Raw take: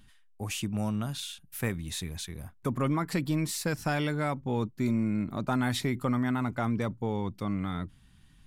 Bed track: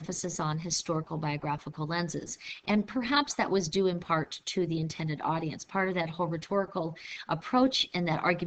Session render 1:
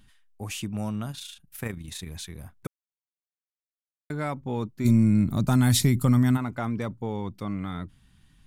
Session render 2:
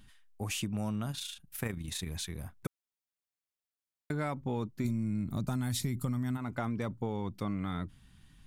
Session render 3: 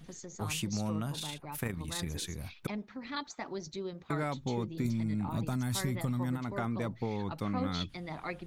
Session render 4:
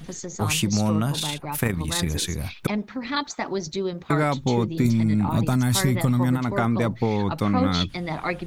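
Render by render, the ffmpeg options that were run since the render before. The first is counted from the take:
ffmpeg -i in.wav -filter_complex "[0:a]asettb=1/sr,asplit=3[link_01][link_02][link_03];[link_01]atrim=end=1.114[link_04];[link_02]atrim=start=1.11:end=2.08,asetpts=PTS-STARTPTS,afade=type=in:duration=0.004:curve=qsin,afade=type=out:start_time=0.966:duration=0.004:curve=qsin,tremolo=f=27:d=0.519[link_05];[link_03]atrim=start=2.076[link_06];[link_04][link_05]acrossfade=duration=0.004:curve1=hsin:curve2=qsin[link_07];[link_07][link_06]acrossfade=duration=0.004:curve1=qsin:curve2=hsin,asplit=3[link_08][link_09][link_10];[link_08]afade=type=out:start_time=4.84:duration=0.02[link_11];[link_09]bass=frequency=250:gain=13,treble=frequency=4000:gain=15,afade=type=in:start_time=4.84:duration=0.02,afade=type=out:start_time=6.36:duration=0.02[link_12];[link_10]afade=type=in:start_time=6.36:duration=0.02[link_13];[link_11][link_12][link_13]amix=inputs=3:normalize=0,asplit=3[link_14][link_15][link_16];[link_14]atrim=end=2.67,asetpts=PTS-STARTPTS,afade=type=out:start_time=2.666:duration=0.004:curve=hsin[link_17];[link_15]atrim=start=2.67:end=4.1,asetpts=PTS-STARTPTS,volume=0[link_18];[link_16]atrim=start=4.1,asetpts=PTS-STARTPTS,afade=type=in:duration=0.004:curve=hsin[link_19];[link_17][link_18][link_19]concat=n=3:v=0:a=1" out.wav
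ffmpeg -i in.wav -af "acompressor=threshold=-30dB:ratio=8" out.wav
ffmpeg -i in.wav -i bed.wav -filter_complex "[1:a]volume=-12dB[link_01];[0:a][link_01]amix=inputs=2:normalize=0" out.wav
ffmpeg -i in.wav -af "volume=12dB" out.wav

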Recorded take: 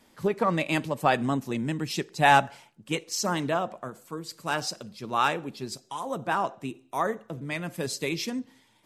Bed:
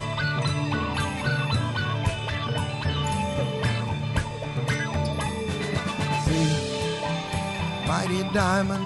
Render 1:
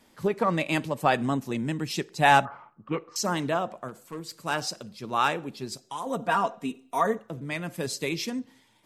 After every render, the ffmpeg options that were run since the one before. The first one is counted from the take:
ffmpeg -i in.wav -filter_complex "[0:a]asettb=1/sr,asplit=3[link_01][link_02][link_03];[link_01]atrim=end=2.454[link_04];[link_02]atrim=start=2.45:end=3.16,asetpts=PTS-STARTPTS,afade=type=in:duration=0.004:curve=qsin,afade=type=out:start_time=0.706:duration=0.004:curve=qsin,lowpass=frequency=1200:width_type=q:width=13[link_05];[link_03]atrim=start=3.156[link_06];[link_04][link_05]acrossfade=duration=0.004:curve1=hsin:curve2=qsin[link_07];[link_07][link_06]acrossfade=duration=0.004:curve1=qsin:curve2=hsin,asettb=1/sr,asplit=3[link_08][link_09][link_10];[link_08]atrim=end=3.884[link_11];[link_09]atrim=start=3.88:end=4.41,asetpts=PTS-STARTPTS,afade=type=in:duration=0.004:curve=qsin,afade=type=out:start_time=0.526:duration=0.004:curve=qsin,asoftclip=type=hard:threshold=-31dB[link_12];[link_10]atrim=start=4.406[link_13];[link_11][link_12]acrossfade=duration=0.004:curve1=hsin:curve2=qsin[link_14];[link_14][link_13]acrossfade=duration=0.004:curve1=qsin:curve2=hsin,asettb=1/sr,asplit=3[link_15][link_16][link_17];[link_15]atrim=end=6.064[link_18];[link_16]atrim=start=6.06:end=7.19,asetpts=PTS-STARTPTS,afade=type=in:duration=0.004:curve=qsin,afade=type=out:start_time=1.126:duration=0.004:curve=qsin,aecho=1:1:4.3:0.78,atrim=end_sample=49833[link_19];[link_17]atrim=start=7.186[link_20];[link_18][link_19]acrossfade=duration=0.004:curve1=hsin:curve2=qsin[link_21];[link_21][link_20]acrossfade=duration=0.004:curve1=qsin:curve2=hsin" out.wav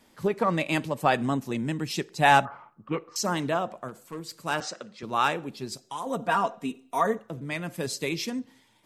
ffmpeg -i in.wav -filter_complex "[0:a]asettb=1/sr,asplit=3[link_01][link_02][link_03];[link_01]atrim=end=4.604[link_04];[link_02]atrim=start=4.6:end=5.03,asetpts=PTS-STARTPTS,afade=type=in:duration=0.004:curve=qsin,afade=type=out:start_time=0.426:duration=0.004:curve=qsin,highpass=230,equalizer=frequency=520:width_type=q:width=4:gain=4,equalizer=frequency=1300:width_type=q:width=4:gain=7,equalizer=frequency=1900:width_type=q:width=4:gain=8,equalizer=frequency=5000:width_type=q:width=4:gain=-6,lowpass=frequency=7300:width=0.5412,lowpass=frequency=7300:width=1.3066[link_05];[link_03]atrim=start=5.026[link_06];[link_04][link_05]acrossfade=duration=0.004:curve1=hsin:curve2=qsin[link_07];[link_07][link_06]acrossfade=duration=0.004:curve1=qsin:curve2=hsin" out.wav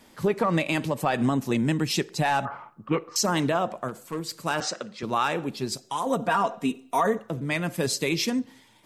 ffmpeg -i in.wav -af "acontrast=44,alimiter=limit=-14dB:level=0:latency=1:release=72" out.wav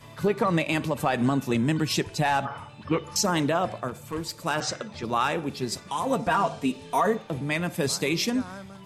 ffmpeg -i in.wav -i bed.wav -filter_complex "[1:a]volume=-18dB[link_01];[0:a][link_01]amix=inputs=2:normalize=0" out.wav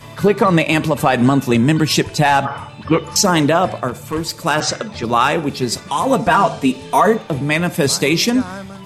ffmpeg -i in.wav -af "volume=10.5dB" out.wav

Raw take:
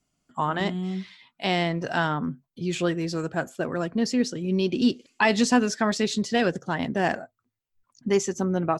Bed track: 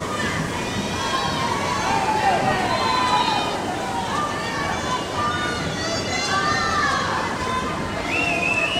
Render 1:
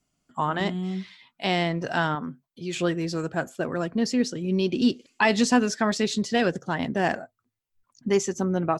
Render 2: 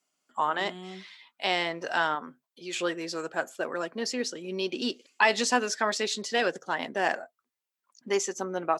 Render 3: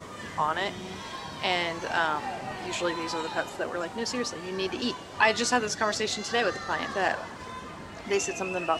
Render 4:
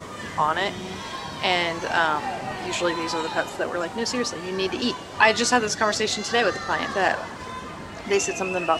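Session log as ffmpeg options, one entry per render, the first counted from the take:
ffmpeg -i in.wav -filter_complex "[0:a]asettb=1/sr,asplit=3[link_01][link_02][link_03];[link_01]atrim=end=2.154[link_04];[link_02]atrim=start=2.15:end=2.77,asetpts=PTS-STARTPTS,afade=type=in:duration=0.004:curve=qsin,afade=type=out:start_time=0.616:duration=0.004:curve=qsin,lowshelf=frequency=230:gain=-10[link_05];[link_03]atrim=start=2.766[link_06];[link_04][link_05]acrossfade=duration=0.004:curve1=hsin:curve2=qsin[link_07];[link_07][link_06]acrossfade=duration=0.004:curve1=qsin:curve2=hsin" out.wav
ffmpeg -i in.wav -af "highpass=470,bandreject=frequency=690:width=22" out.wav
ffmpeg -i in.wav -i bed.wav -filter_complex "[1:a]volume=-16dB[link_01];[0:a][link_01]amix=inputs=2:normalize=0" out.wav
ffmpeg -i in.wav -af "volume=5dB" out.wav

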